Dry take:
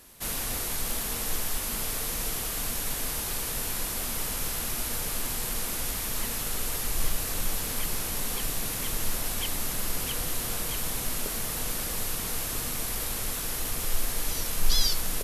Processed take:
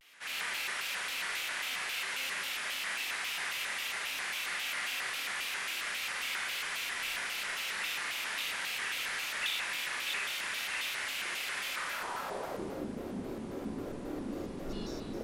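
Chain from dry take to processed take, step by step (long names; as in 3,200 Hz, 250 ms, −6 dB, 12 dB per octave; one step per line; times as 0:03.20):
band-pass filter sweep 2,200 Hz → 300 Hz, 0:11.66–0:12.76
four-comb reverb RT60 1.2 s, combs from 27 ms, DRR −3.5 dB
pitch modulation by a square or saw wave square 3.7 Hz, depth 250 cents
level +3.5 dB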